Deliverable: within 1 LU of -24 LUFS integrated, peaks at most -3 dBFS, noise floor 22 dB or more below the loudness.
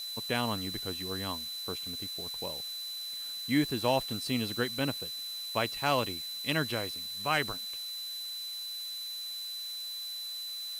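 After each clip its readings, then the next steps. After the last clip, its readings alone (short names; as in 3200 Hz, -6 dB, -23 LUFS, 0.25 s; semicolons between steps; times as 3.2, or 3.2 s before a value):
steady tone 4000 Hz; tone level -37 dBFS; noise floor -39 dBFS; noise floor target -55 dBFS; loudness -33.0 LUFS; peak -14.5 dBFS; loudness target -24.0 LUFS
-> notch 4000 Hz, Q 30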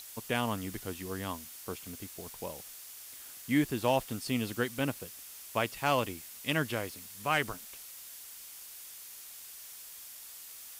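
steady tone none; noise floor -48 dBFS; noise floor target -58 dBFS
-> noise print and reduce 10 dB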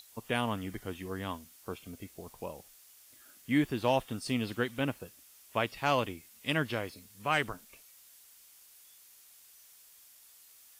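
noise floor -58 dBFS; loudness -34.0 LUFS; peak -15.0 dBFS; loudness target -24.0 LUFS
-> gain +10 dB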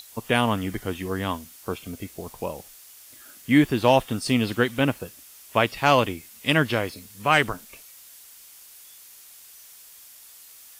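loudness -24.0 LUFS; peak -5.0 dBFS; noise floor -48 dBFS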